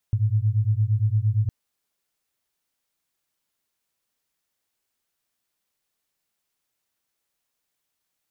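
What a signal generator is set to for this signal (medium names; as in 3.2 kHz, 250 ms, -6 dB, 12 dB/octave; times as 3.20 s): beating tones 103 Hz, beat 8.7 Hz, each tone -21.5 dBFS 1.36 s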